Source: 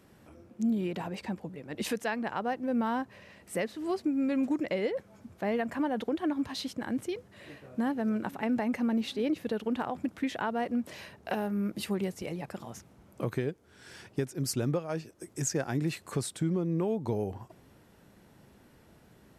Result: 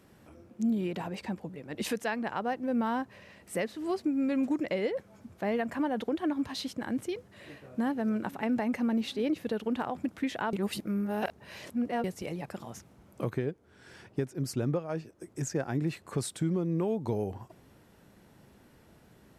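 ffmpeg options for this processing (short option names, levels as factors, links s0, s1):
-filter_complex "[0:a]asettb=1/sr,asplit=3[s0][s1][s2];[s0]atrim=end=13.304[s3];[s1]atrim=start=13.3:end=16.18,asetpts=PTS-STARTPTS,afade=t=in:d=0.004:c=qsin,afade=t=out:st=2.876:d=0.004:c=qsin,highshelf=f=2700:g=-8[s4];[s2]atrim=start=16.176[s5];[s3][s4]acrossfade=d=0.004:c1=hsin:c2=qsin[s6];[s6][s5]acrossfade=d=0.004:c1=qsin:c2=hsin,asplit=3[s7][s8][s9];[s7]atrim=end=10.532[s10];[s8]atrim=start=10.528:end=12.042,asetpts=PTS-STARTPTS,areverse[s11];[s9]atrim=start=12.038[s12];[s10][s11]acrossfade=d=0.004:c1=hsin:c2=hsin[s13];[s13][s12]acrossfade=d=0.004:c1=hsin:c2=hsin"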